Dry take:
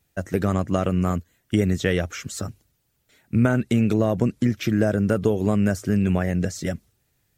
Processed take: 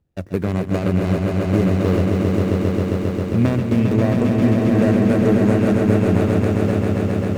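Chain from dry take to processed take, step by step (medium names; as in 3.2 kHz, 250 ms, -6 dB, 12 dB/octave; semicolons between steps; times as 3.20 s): median filter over 41 samples; echo with a slow build-up 134 ms, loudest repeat 5, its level -5 dB; trim +1.5 dB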